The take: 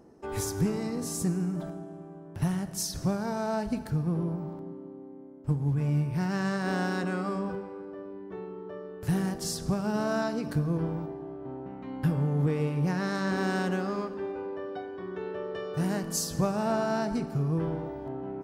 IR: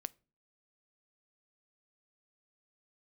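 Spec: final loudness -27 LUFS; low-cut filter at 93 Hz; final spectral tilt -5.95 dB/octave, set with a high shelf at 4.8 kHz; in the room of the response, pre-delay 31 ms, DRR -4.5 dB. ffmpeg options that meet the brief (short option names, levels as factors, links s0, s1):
-filter_complex "[0:a]highpass=93,highshelf=f=4800:g=-7,asplit=2[s0][s1];[1:a]atrim=start_sample=2205,adelay=31[s2];[s1][s2]afir=irnorm=-1:irlink=0,volume=2.37[s3];[s0][s3]amix=inputs=2:normalize=0,volume=0.841"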